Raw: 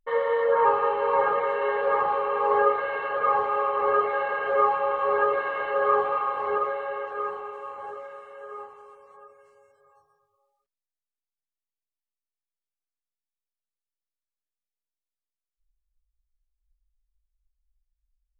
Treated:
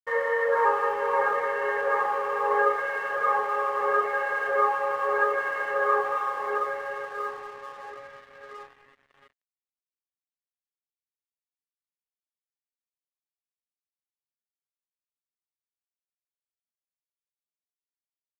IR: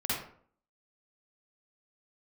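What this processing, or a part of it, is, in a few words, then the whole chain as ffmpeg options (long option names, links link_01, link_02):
pocket radio on a weak battery: -af "highpass=270,lowpass=3100,aeval=exprs='sgn(val(0))*max(abs(val(0))-0.00398,0)':channel_layout=same,equalizer=frequency=1800:width_type=o:width=0.4:gain=10,volume=-2dB"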